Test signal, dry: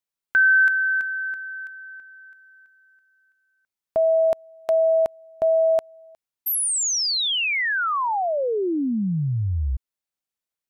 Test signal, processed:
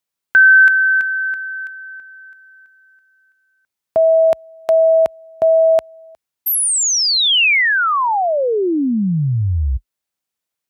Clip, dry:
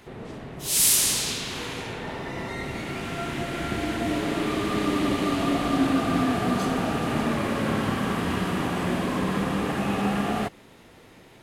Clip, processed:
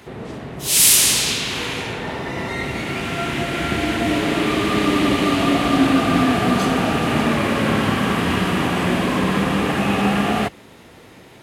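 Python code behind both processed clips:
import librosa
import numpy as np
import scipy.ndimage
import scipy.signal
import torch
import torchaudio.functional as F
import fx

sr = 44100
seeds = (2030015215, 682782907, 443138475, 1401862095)

y = scipy.signal.sosfilt(scipy.signal.butter(4, 45.0, 'highpass', fs=sr, output='sos'), x)
y = fx.dynamic_eq(y, sr, hz=2600.0, q=1.3, threshold_db=-40.0, ratio=4.0, max_db=4)
y = y * librosa.db_to_amplitude(6.5)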